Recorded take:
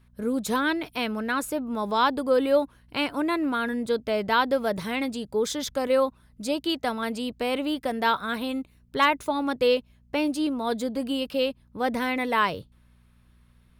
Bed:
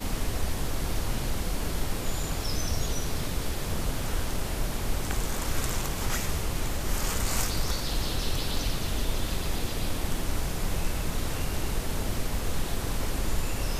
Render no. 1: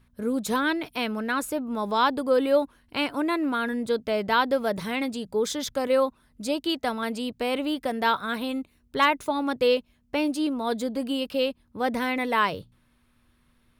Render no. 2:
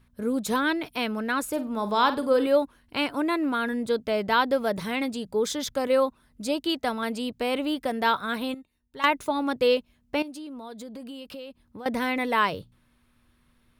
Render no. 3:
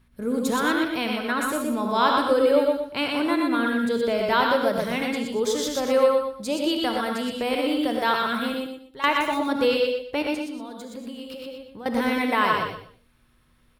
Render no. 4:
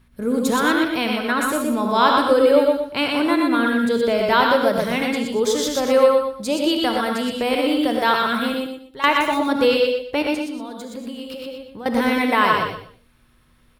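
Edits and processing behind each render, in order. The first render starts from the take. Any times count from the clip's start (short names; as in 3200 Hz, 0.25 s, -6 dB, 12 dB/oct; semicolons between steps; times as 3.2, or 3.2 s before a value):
de-hum 60 Hz, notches 3
1.48–2.47 flutter echo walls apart 8.3 m, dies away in 0.26 s; 8.54–9.04 resonator 920 Hz, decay 0.16 s, mix 80%; 10.22–11.86 compressor, threshold -37 dBFS
feedback echo 0.122 s, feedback 24%, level -4 dB; non-linear reverb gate 0.13 s rising, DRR 4.5 dB
gain +4.5 dB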